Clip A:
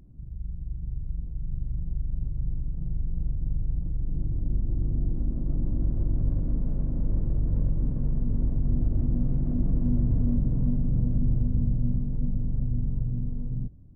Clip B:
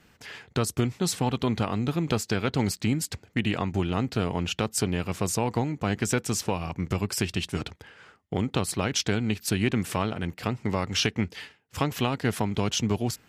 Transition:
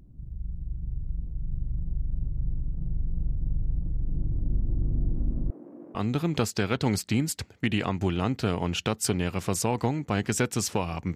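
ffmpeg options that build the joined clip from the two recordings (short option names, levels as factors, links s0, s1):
-filter_complex "[0:a]asettb=1/sr,asplit=3[s0][s1][s2];[s0]atrim=end=5.504[s3];[s1]atrim=start=5.5:end=5.95,asetpts=PTS-STARTPTS,afade=t=in:d=0.004:c=qsin,afade=t=out:st=0.446:d=0.004:c=qsin,highpass=f=330:w=0.5412,highpass=f=330:w=1.3066[s4];[s2]atrim=start=5.946[s5];[s3][s4]acrossfade=d=0.004:c1=hsin:c2=qsin[s6];[s6][s5]acrossfade=d=0.004:c1=qsin:c2=hsin,apad=whole_dur=11.15,atrim=end=11.15,atrim=end=5.952[s7];[1:a]atrim=start=1.678:end=6.88[s8];[s7][s8]acrossfade=d=0.004:c1=hsin:c2=hsin"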